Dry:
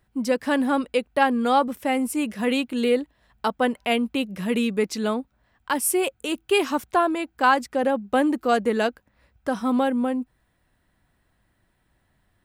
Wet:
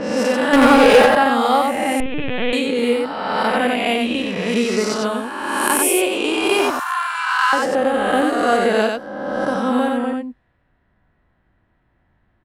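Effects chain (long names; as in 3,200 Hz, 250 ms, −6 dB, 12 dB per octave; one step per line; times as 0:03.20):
peak hold with a rise ahead of every peak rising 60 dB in 1.84 s
low-pass that shuts in the quiet parts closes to 2,100 Hz, open at −14.5 dBFS
0:00.53–0:01.06: leveller curve on the samples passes 3
0:06.70–0:07.53: Butterworth high-pass 1,000 Hz 48 dB per octave
single-tap delay 92 ms −3.5 dB
0:02.00–0:02.53: linear-prediction vocoder at 8 kHz pitch kept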